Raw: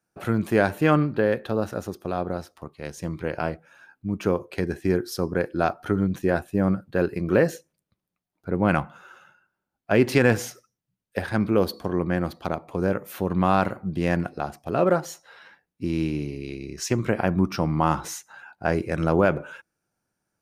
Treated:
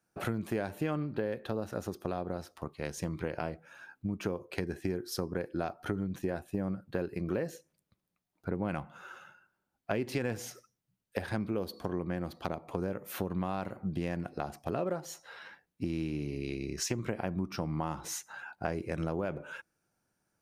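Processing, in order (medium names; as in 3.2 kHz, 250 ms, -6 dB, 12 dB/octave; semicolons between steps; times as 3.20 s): dynamic bell 1.4 kHz, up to -4 dB, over -36 dBFS, Q 1.5; compression 5:1, threshold -31 dBFS, peak gain reduction 15.5 dB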